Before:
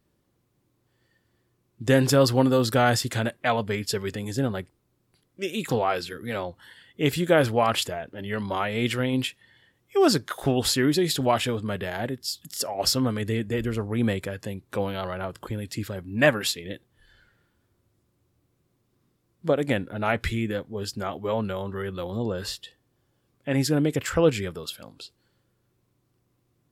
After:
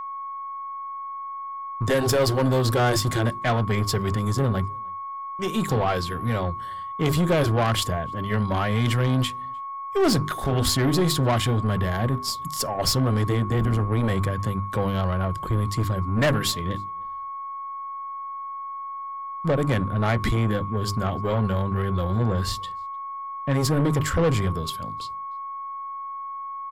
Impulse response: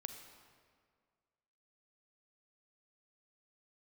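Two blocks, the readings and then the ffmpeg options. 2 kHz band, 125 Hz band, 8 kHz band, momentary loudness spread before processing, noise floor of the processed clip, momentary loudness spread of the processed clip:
−1.0 dB, +7.0 dB, +1.0 dB, 12 LU, −34 dBFS, 12 LU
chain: -filter_complex "[0:a]bandreject=frequency=50:width_type=h:width=6,bandreject=frequency=100:width_type=h:width=6,bandreject=frequency=150:width_type=h:width=6,bandreject=frequency=200:width_type=h:width=6,bandreject=frequency=250:width_type=h:width=6,bandreject=frequency=300:width_type=h:width=6,bandreject=frequency=350:width_type=h:width=6,bandreject=frequency=400:width_type=h:width=6,agate=range=-33dB:threshold=-47dB:ratio=3:detection=peak,bandreject=frequency=2600:width=7.9,acrossover=split=160|1200|3500[link_01][link_02][link_03][link_04];[link_01]aeval=exprs='0.0841*sin(PI/2*3.55*val(0)/0.0841)':channel_layout=same[link_05];[link_05][link_02][link_03][link_04]amix=inputs=4:normalize=0,aeval=exprs='val(0)+0.0224*sin(2*PI*1100*n/s)':channel_layout=same,asoftclip=type=tanh:threshold=-18dB,aeval=exprs='0.126*(cos(1*acos(clip(val(0)/0.126,-1,1)))-cos(1*PI/2))+0.0126*(cos(4*acos(clip(val(0)/0.126,-1,1)))-cos(4*PI/2))+0.00398*(cos(6*acos(clip(val(0)/0.126,-1,1)))-cos(6*PI/2))':channel_layout=same,asplit=2[link_06][link_07];[link_07]adelay=303.2,volume=-29dB,highshelf=frequency=4000:gain=-6.82[link_08];[link_06][link_08]amix=inputs=2:normalize=0,volume=2.5dB"

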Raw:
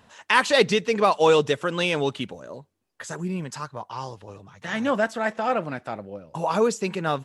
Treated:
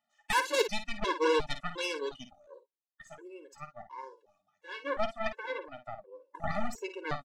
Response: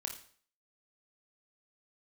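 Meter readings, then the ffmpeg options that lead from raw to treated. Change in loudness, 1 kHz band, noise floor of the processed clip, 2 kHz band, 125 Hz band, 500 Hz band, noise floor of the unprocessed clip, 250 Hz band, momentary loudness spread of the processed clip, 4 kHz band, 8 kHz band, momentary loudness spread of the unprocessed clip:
−10.0 dB, −10.0 dB, −85 dBFS, −9.5 dB, −15.0 dB, −11.5 dB, −65 dBFS, −13.5 dB, 21 LU, −9.0 dB, −8.0 dB, 18 LU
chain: -af "highpass=390,afftdn=noise_reduction=14:noise_floor=-33,aeval=exprs='0.631*(cos(1*acos(clip(val(0)/0.631,-1,1)))-cos(1*PI/2))+0.1*(cos(2*acos(clip(val(0)/0.631,-1,1)))-cos(2*PI/2))+0.141*(cos(8*acos(clip(val(0)/0.631,-1,1)))-cos(8*PI/2))':channel_layout=same,aecho=1:1:13|53:0.158|0.299,afftfilt=real='re*gt(sin(2*PI*1.4*pts/sr)*(1-2*mod(floor(b*sr/1024/290),2)),0)':imag='im*gt(sin(2*PI*1.4*pts/sr)*(1-2*mod(floor(b*sr/1024/290),2)),0)':win_size=1024:overlap=0.75,volume=-8.5dB"

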